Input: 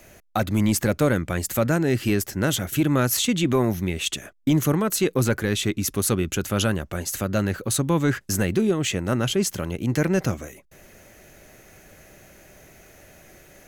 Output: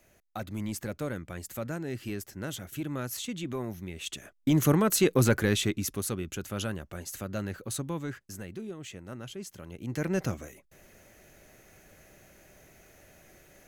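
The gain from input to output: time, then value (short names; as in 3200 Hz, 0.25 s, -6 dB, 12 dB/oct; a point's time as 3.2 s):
3.89 s -14 dB
4.7 s -1.5 dB
5.48 s -1.5 dB
6.13 s -11 dB
7.78 s -11 dB
8.34 s -18.5 dB
9.51 s -18.5 dB
10.16 s -7 dB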